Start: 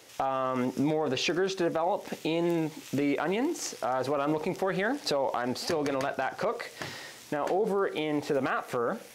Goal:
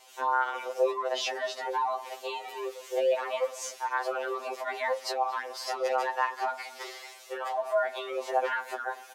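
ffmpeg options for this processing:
ffmpeg -i in.wav -filter_complex "[0:a]asplit=2[link_01][link_02];[link_02]adelay=230,highpass=300,lowpass=3400,asoftclip=type=hard:threshold=-28.5dB,volume=-15dB[link_03];[link_01][link_03]amix=inputs=2:normalize=0,afreqshift=240,afftfilt=real='re*2.45*eq(mod(b,6),0)':imag='im*2.45*eq(mod(b,6),0)':win_size=2048:overlap=0.75" out.wav

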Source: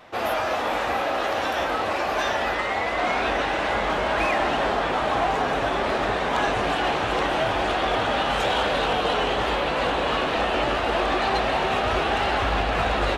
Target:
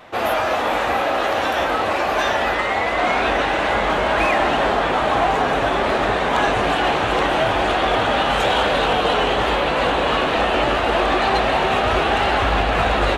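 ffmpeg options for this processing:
ffmpeg -i in.wav -af "equalizer=frequency=5200:width_type=o:width=0.45:gain=-3.5,volume=5dB" out.wav

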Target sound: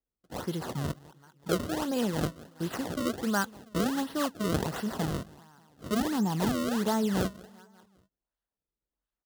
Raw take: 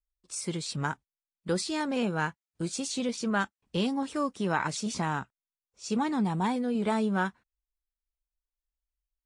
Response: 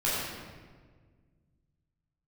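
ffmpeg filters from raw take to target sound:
-filter_complex "[0:a]asettb=1/sr,asplit=3[link_01][link_02][link_03];[link_01]atrim=end=2.144[link_04];[link_02]atrim=start=2.14:end=2.67,asetpts=PTS-STARTPTS,afade=type=in:duration=0.004:curve=qsin,afade=type=out:start_time=0.526:duration=0.004:curve=qsin,aemphasis=mode=production:type=50fm[link_05];[link_03]atrim=start=2.666[link_06];[link_04][link_05]acrossfade=duration=0.004:curve1=hsin:curve2=qsin[link_07];[link_07][link_06]acrossfade=duration=0.004:curve1=qsin:curve2=hsin,asplit=2[link_08][link_09];[link_09]aecho=0:1:195|390|585|780:0.0794|0.0453|0.0258|0.0147[link_10];[link_08][link_10]amix=inputs=2:normalize=0,acrusher=samples=30:mix=1:aa=0.000001:lfo=1:lforange=48:lforate=1.4,highpass=53,equalizer=frequency=2300:width_type=o:width=0.22:gain=-12.5"

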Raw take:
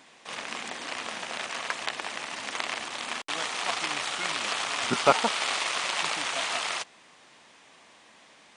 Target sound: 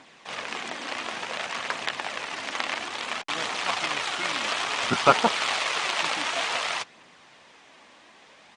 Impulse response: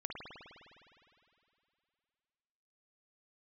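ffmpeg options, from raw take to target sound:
-filter_complex "[0:a]asplit=2[link_01][link_02];[link_02]asetrate=33038,aresample=44100,atempo=1.33484,volume=-13dB[link_03];[link_01][link_03]amix=inputs=2:normalize=0,aphaser=in_gain=1:out_gain=1:delay=3.8:decay=0.27:speed=0.57:type=triangular,adynamicsmooth=sensitivity=0.5:basefreq=8000,volume=2.5dB"

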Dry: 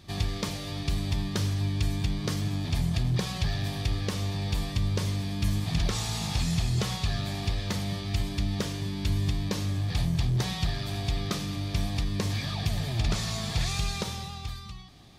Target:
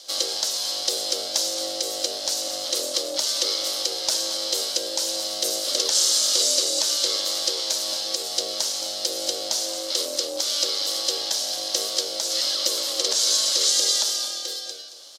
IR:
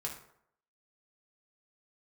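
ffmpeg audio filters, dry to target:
-filter_complex "[0:a]aexciter=amount=13.2:drive=6:freq=4200,aeval=exprs='val(0)*sin(2*PI*430*n/s)':channel_layout=same,alimiter=limit=-5.5dB:level=0:latency=1:release=199,acrossover=split=530 6300:gain=0.0794 1 0.224[link_01][link_02][link_03];[link_01][link_02][link_03]amix=inputs=3:normalize=0,aecho=1:1:223:0.251,volume=3.5dB"

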